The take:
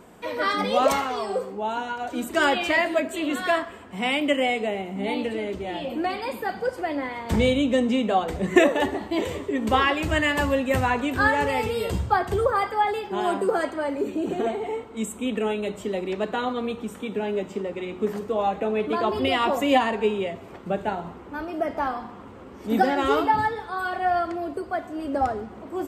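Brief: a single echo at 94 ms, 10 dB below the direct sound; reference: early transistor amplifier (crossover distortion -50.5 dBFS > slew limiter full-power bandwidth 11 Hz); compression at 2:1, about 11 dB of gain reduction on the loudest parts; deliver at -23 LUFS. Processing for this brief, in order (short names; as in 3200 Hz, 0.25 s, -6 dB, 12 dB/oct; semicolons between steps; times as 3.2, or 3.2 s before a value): compressor 2:1, threshold -32 dBFS; echo 94 ms -10 dB; crossover distortion -50.5 dBFS; slew limiter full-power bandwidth 11 Hz; gain +13 dB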